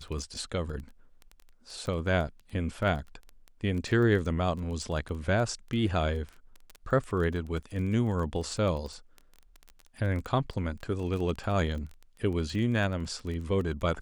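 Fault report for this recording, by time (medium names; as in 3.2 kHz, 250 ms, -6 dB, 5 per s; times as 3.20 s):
crackle 15 per s -34 dBFS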